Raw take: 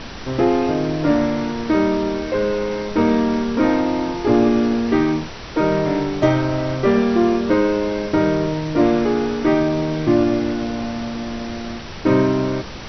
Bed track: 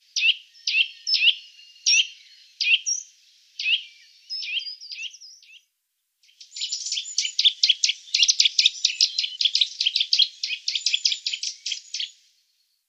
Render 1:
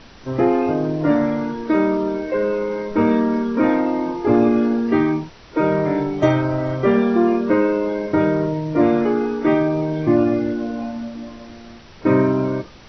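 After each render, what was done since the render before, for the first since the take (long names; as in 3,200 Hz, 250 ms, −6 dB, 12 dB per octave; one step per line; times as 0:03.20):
noise reduction from a noise print 11 dB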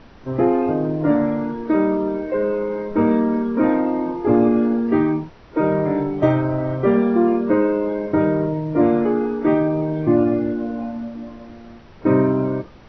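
low-pass filter 3,900 Hz 6 dB per octave
high-shelf EQ 2,200 Hz −8.5 dB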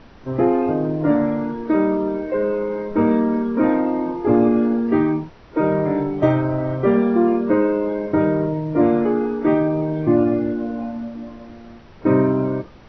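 no processing that can be heard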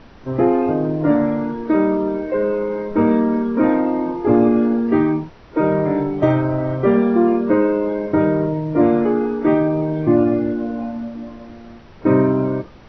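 level +1.5 dB
brickwall limiter −3 dBFS, peak gain reduction 1.5 dB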